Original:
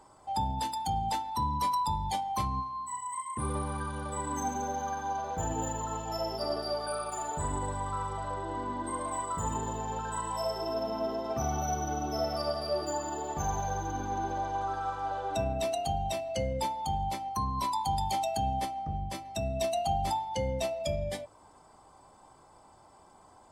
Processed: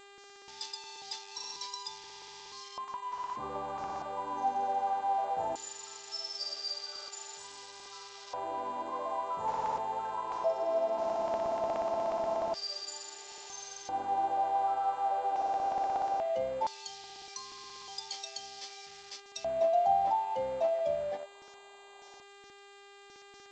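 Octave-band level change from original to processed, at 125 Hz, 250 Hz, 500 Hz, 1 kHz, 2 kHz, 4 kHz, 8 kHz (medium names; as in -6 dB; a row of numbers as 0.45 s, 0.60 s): -22.0 dB, -12.0 dB, 0.0 dB, -1.0 dB, -4.5 dB, +0.5 dB, -6.0 dB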